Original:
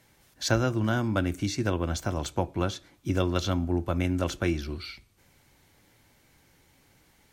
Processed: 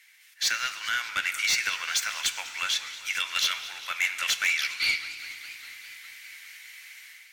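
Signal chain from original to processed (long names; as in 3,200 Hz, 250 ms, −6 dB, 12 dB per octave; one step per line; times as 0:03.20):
automatic gain control gain up to 11 dB
in parallel at −1 dB: brickwall limiter −12 dBFS, peak gain reduction 9.5 dB
on the sum: four-pole ladder high-pass 1,800 Hz, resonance 55%
soft clipping −26.5 dBFS, distortion −10 dB
feedback delay network reverb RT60 2.5 s, low-frequency decay 1.4×, high-frequency decay 1×, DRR 12 dB
feedback echo with a swinging delay time 203 ms, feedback 77%, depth 212 cents, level −17 dB
level +8 dB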